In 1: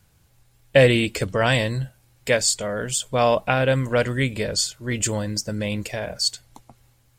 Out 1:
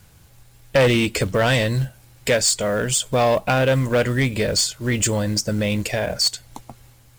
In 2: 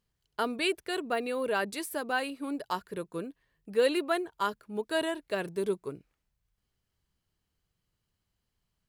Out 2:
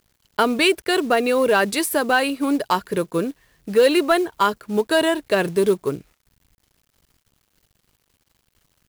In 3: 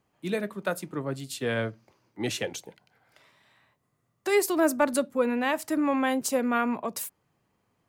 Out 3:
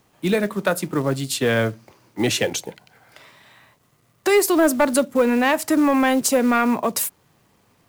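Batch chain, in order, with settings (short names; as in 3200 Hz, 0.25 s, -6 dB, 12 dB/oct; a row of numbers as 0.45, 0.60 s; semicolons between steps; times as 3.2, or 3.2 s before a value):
in parallel at +1.5 dB: compressor 16:1, threshold -29 dBFS; on the sum: companded quantiser 6-bit; soft clip -13 dBFS; match loudness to -20 LUFS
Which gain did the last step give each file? +2.0, +8.0, +5.5 dB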